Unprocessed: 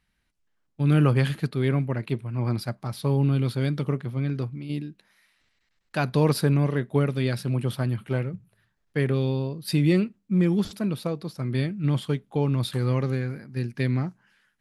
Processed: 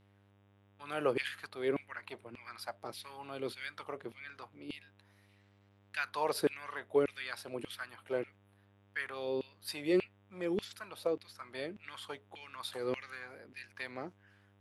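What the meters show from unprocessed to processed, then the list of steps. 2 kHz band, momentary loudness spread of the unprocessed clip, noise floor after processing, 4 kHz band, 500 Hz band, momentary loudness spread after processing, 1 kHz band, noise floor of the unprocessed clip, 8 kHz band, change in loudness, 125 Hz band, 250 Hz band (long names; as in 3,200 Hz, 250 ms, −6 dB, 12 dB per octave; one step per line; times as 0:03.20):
−5.0 dB, 10 LU, −66 dBFS, −7.5 dB, −7.0 dB, 16 LU, −6.5 dB, −73 dBFS, −8.5 dB, −13.0 dB, −30.5 dB, −16.0 dB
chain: auto-filter high-pass saw down 1.7 Hz 330–2,700 Hz
hum with harmonics 100 Hz, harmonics 38, −58 dBFS −6 dB per octave
level −8.5 dB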